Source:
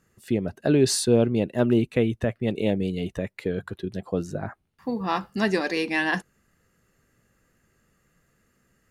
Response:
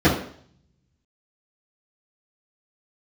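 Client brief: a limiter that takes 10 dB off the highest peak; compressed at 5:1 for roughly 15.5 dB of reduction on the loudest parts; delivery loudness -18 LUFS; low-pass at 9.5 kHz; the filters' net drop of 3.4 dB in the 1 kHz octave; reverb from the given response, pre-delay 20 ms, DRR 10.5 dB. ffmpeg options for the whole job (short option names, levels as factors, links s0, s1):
-filter_complex "[0:a]lowpass=9500,equalizer=f=1000:t=o:g=-4.5,acompressor=threshold=0.0224:ratio=5,alimiter=level_in=1.78:limit=0.0631:level=0:latency=1,volume=0.562,asplit=2[s0][s1];[1:a]atrim=start_sample=2205,adelay=20[s2];[s1][s2]afir=irnorm=-1:irlink=0,volume=0.0251[s3];[s0][s3]amix=inputs=2:normalize=0,volume=10.6"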